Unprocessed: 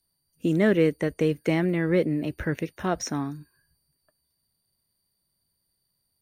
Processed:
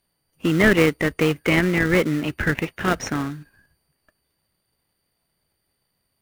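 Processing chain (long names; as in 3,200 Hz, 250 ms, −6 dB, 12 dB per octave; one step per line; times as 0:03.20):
flat-topped bell 2,000 Hz +11.5 dB
in parallel at −5 dB: sample-rate reduction 1,700 Hz, jitter 20%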